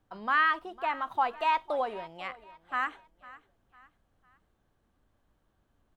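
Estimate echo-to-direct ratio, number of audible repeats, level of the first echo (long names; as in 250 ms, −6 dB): −18.5 dB, 2, −19.0 dB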